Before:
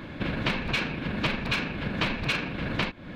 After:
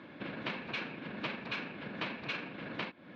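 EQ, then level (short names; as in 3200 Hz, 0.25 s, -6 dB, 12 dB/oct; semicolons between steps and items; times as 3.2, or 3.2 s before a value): HPF 210 Hz 12 dB/oct; Bessel low-pass 3800 Hz, order 8; -9.0 dB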